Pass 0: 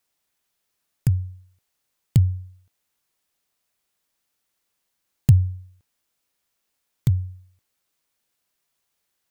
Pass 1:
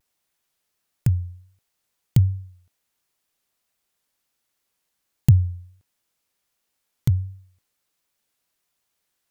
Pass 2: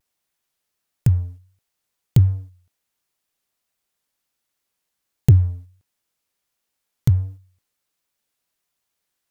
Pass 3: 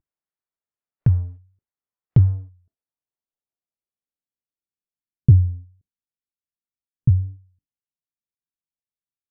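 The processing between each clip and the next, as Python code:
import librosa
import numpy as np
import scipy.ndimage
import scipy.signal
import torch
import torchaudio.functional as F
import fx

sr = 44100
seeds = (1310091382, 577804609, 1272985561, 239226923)

y1 = fx.vibrato(x, sr, rate_hz=1.4, depth_cents=69.0)
y2 = fx.leveller(y1, sr, passes=1)
y3 = fx.noise_reduce_blind(y2, sr, reduce_db=14)
y3 = fx.filter_sweep_lowpass(y3, sr, from_hz=1500.0, to_hz=240.0, start_s=2.09, end_s=5.5, q=0.87)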